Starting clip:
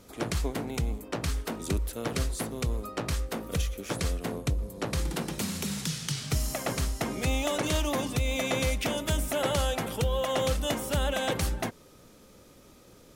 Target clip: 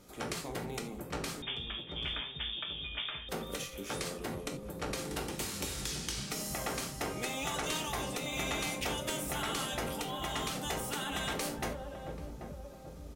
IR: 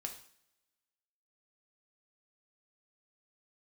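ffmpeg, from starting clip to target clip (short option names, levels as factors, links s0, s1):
-filter_complex "[1:a]atrim=start_sample=2205,afade=t=out:st=0.15:d=0.01,atrim=end_sample=7056,asetrate=48510,aresample=44100[s0];[0:a][s0]afir=irnorm=-1:irlink=0,asettb=1/sr,asplit=3[s1][s2][s3];[s1]atrim=end=1.424[s4];[s2]atrim=start=1.42:end=3.29,asetpts=PTS-STARTPTS,afade=t=in:d=0.004:c=qsin,afade=t=out:st=1.866:d=0.004:c=qsin,lowpass=f=3100:t=q:w=0.5098,lowpass=f=3100:t=q:w=0.6013,lowpass=f=3100:t=q:w=0.9,lowpass=f=3100:t=q:w=2.563,afreqshift=-3700[s5];[s3]atrim=start=3.286[s6];[s4][s5]acrossfade=d=0.004:c1=hsin:c2=qsin[s7];[s7][s6]acrossfade=d=0.004:c1=qsin:c2=hsin,asplit=2[s8][s9];[s9]adelay=786,lowpass=f=830:p=1,volume=0.355,asplit=2[s10][s11];[s11]adelay=786,lowpass=f=830:p=1,volume=0.53,asplit=2[s12][s13];[s13]adelay=786,lowpass=f=830:p=1,volume=0.53,asplit=2[s14][s15];[s15]adelay=786,lowpass=f=830:p=1,volume=0.53,asplit=2[s16][s17];[s17]adelay=786,lowpass=f=830:p=1,volume=0.53,asplit=2[s18][s19];[s19]adelay=786,lowpass=f=830:p=1,volume=0.53[s20];[s8][s10][s12][s14][s16][s18][s20]amix=inputs=7:normalize=0,afftfilt=real='re*lt(hypot(re,im),0.112)':imag='im*lt(hypot(re,im),0.112)':win_size=1024:overlap=0.75"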